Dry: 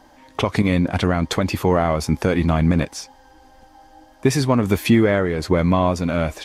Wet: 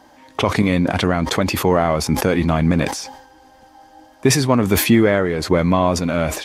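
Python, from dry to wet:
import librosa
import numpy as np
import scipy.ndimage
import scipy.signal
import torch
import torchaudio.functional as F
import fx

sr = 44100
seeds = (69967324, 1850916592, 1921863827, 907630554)

y = fx.highpass(x, sr, hz=110.0, slope=6)
y = fx.sustainer(y, sr, db_per_s=72.0)
y = F.gain(torch.from_numpy(y), 2.0).numpy()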